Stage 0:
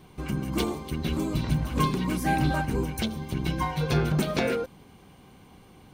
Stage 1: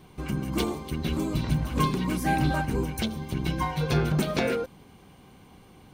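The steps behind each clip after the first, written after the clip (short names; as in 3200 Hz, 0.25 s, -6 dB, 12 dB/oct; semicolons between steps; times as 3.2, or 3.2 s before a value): nothing audible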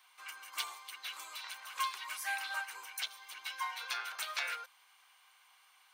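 HPF 1100 Hz 24 dB/oct; gain -3.5 dB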